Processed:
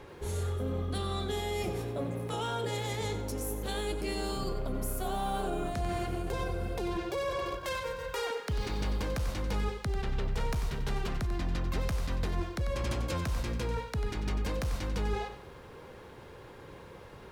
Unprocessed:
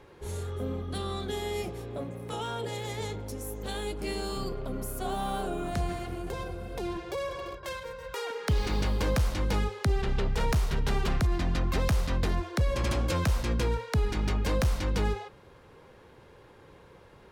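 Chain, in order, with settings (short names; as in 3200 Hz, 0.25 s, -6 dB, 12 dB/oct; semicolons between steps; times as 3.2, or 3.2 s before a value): reverse; compressor 5:1, threshold -35 dBFS, peak gain reduction 12 dB; reverse; lo-fi delay 93 ms, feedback 35%, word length 11-bit, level -10.5 dB; gain +4.5 dB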